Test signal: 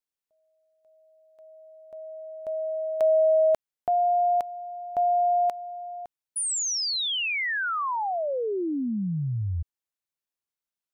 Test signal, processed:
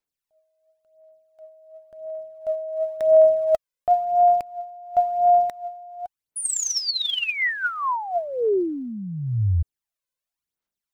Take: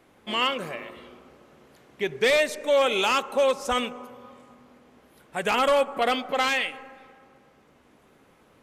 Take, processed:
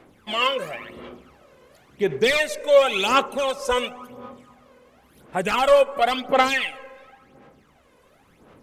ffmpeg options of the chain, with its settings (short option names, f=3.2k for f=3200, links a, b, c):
-af "aphaser=in_gain=1:out_gain=1:delay=2:decay=0.62:speed=0.94:type=sinusoidal"